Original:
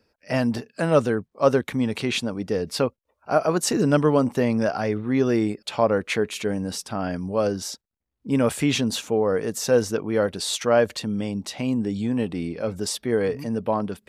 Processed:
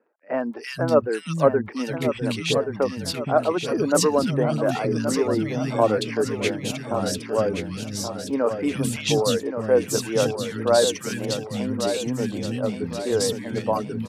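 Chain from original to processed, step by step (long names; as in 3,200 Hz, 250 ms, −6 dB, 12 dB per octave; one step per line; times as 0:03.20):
surface crackle 30 per second −48 dBFS
three-band delay without the direct sound mids, highs, lows 340/470 ms, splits 250/1,800 Hz
reverb reduction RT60 0.59 s
on a send: repeating echo 1,126 ms, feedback 46%, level −8 dB
on the sum: level +1.5 dB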